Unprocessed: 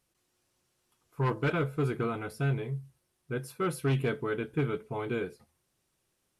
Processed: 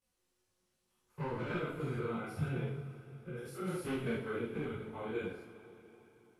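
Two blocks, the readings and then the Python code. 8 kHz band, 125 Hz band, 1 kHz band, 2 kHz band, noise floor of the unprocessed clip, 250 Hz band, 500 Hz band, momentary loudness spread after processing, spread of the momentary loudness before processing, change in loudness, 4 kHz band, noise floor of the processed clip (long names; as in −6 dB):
−7.5 dB, −8.5 dB, −7.5 dB, −6.5 dB, −78 dBFS, −5.5 dB, −6.5 dB, 14 LU, 9 LU, −7.0 dB, −6.5 dB, −81 dBFS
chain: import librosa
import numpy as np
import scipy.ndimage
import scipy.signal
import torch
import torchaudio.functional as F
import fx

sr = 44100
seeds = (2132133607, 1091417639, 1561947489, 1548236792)

y = fx.spec_steps(x, sr, hold_ms=100)
y = fx.chorus_voices(y, sr, voices=4, hz=1.4, base_ms=20, depth_ms=3.0, mix_pct=70)
y = fx.rev_double_slope(y, sr, seeds[0], early_s=0.41, late_s=3.8, knee_db=-18, drr_db=-1.0)
y = y * 10.0 ** (-5.0 / 20.0)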